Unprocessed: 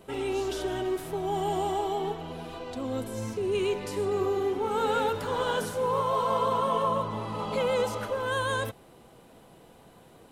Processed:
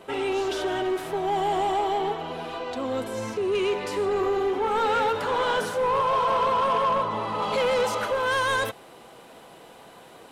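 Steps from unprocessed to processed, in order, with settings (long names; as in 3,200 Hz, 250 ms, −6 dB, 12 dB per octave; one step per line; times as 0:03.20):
mid-hump overdrive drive 17 dB, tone 2,700 Hz, clips at −14 dBFS, from 0:07.42 tone 5,900 Hz
level −1 dB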